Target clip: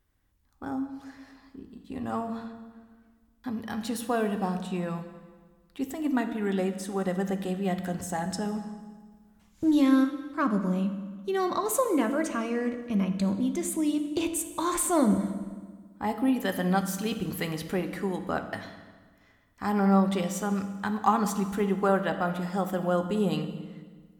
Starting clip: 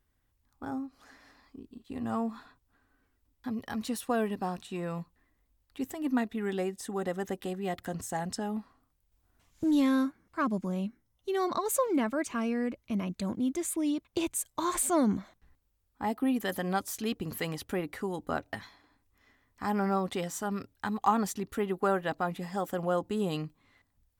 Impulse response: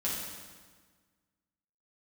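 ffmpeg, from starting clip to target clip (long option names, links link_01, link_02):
-filter_complex "[0:a]asplit=2[link_01][link_02];[1:a]atrim=start_sample=2205,highshelf=frequency=6100:gain=-6[link_03];[link_02][link_03]afir=irnorm=-1:irlink=0,volume=-9dB[link_04];[link_01][link_04]amix=inputs=2:normalize=0"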